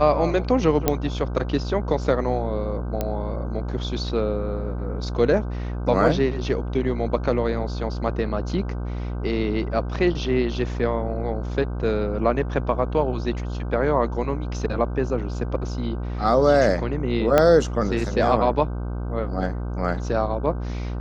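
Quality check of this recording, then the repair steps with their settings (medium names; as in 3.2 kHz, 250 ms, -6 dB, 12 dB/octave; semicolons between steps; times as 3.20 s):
buzz 60 Hz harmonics 26 -28 dBFS
0.88 s: pop -4 dBFS
3.01 s: pop -11 dBFS
17.38 s: pop -4 dBFS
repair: de-click; de-hum 60 Hz, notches 26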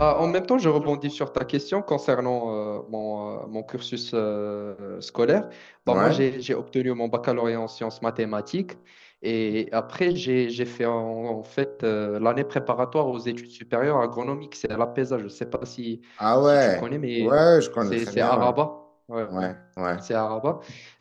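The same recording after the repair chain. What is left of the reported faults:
17.38 s: pop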